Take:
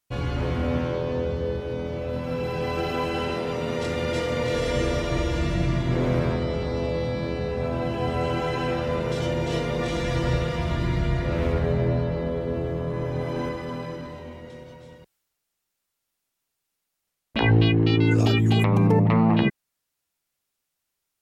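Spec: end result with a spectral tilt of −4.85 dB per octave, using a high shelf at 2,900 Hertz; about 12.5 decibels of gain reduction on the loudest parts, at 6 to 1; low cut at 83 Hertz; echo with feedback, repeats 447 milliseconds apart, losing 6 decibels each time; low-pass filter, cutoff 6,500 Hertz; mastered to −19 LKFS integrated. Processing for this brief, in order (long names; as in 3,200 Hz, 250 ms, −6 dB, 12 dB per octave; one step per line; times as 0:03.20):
high-pass filter 83 Hz
low-pass filter 6,500 Hz
high-shelf EQ 2,900 Hz +8.5 dB
downward compressor 6 to 1, threshold −29 dBFS
repeating echo 447 ms, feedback 50%, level −6 dB
level +13 dB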